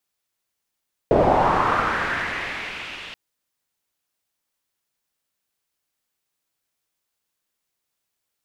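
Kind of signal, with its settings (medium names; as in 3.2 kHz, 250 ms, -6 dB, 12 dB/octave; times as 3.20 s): swept filtered noise white, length 2.03 s lowpass, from 480 Hz, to 2.9 kHz, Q 2.7, linear, gain ramp -30 dB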